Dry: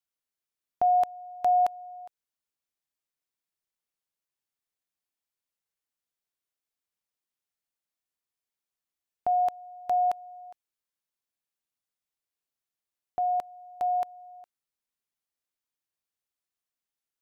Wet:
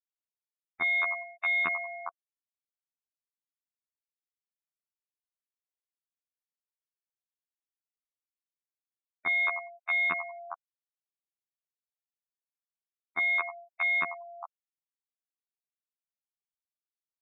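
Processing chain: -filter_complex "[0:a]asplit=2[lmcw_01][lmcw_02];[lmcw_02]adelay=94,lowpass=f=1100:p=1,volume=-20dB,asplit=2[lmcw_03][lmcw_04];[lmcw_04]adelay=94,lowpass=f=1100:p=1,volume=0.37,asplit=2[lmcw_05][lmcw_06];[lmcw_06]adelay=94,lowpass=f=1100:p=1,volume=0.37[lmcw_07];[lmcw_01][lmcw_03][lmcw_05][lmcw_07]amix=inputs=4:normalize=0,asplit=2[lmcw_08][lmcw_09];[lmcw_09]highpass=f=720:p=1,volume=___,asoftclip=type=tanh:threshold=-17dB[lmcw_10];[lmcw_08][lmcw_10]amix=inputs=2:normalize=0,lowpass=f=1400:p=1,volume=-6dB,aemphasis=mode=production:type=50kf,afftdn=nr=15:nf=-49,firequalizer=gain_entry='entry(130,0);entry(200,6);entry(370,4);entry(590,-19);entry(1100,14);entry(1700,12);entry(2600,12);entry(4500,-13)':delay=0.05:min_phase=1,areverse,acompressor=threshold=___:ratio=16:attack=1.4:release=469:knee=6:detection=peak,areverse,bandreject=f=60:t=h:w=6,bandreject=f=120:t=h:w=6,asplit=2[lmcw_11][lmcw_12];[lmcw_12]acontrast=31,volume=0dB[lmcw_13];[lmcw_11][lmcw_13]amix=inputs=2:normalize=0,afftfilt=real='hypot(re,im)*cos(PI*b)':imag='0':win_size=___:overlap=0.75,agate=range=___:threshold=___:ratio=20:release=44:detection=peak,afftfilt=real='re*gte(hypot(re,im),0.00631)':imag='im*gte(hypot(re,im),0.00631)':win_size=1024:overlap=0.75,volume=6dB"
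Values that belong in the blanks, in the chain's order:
20dB, -34dB, 2048, -13dB, -59dB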